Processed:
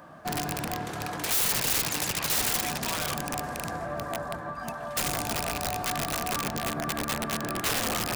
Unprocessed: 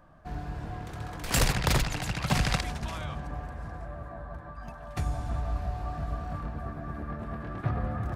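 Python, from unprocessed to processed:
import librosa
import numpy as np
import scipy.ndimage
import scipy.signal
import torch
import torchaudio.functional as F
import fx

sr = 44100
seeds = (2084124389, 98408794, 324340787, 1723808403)

p1 = fx.rattle_buzz(x, sr, strikes_db=-32.0, level_db=-27.0)
p2 = 10.0 ** (-26.5 / 20.0) * np.tanh(p1 / 10.0 ** (-26.5 / 20.0))
p3 = p1 + (p2 * 10.0 ** (-11.0 / 20.0))
p4 = fx.echo_wet_highpass(p3, sr, ms=577, feedback_pct=51, hz=5500.0, wet_db=-23)
p5 = fx.rider(p4, sr, range_db=4, speed_s=2.0)
p6 = scipy.signal.sosfilt(scipy.signal.butter(2, 180.0, 'highpass', fs=sr, output='sos'), p5)
p7 = (np.mod(10.0 ** (28.0 / 20.0) * p6 + 1.0, 2.0) - 1.0) / 10.0 ** (28.0 / 20.0)
p8 = fx.high_shelf(p7, sr, hz=5400.0, db=5.5)
y = p8 * 10.0 ** (4.5 / 20.0)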